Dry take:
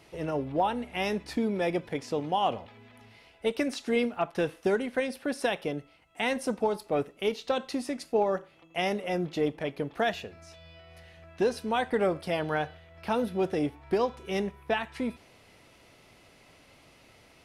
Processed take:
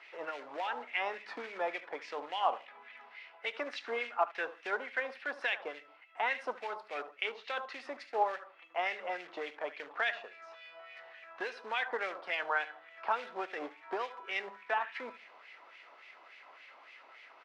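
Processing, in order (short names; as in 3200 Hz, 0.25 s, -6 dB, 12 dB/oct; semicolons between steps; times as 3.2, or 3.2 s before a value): de-hum 103.3 Hz, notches 3; on a send: feedback echo 74 ms, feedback 25%, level -16 dB; on the sum: short-mantissa float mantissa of 2-bit; three-band isolator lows -24 dB, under 280 Hz, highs -16 dB, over 6300 Hz; in parallel at +2 dB: compressor, threshold -42 dBFS, peak gain reduction 18.5 dB; on the sum: LFO band-pass sine 3.5 Hz 980–2300 Hz; gain +3 dB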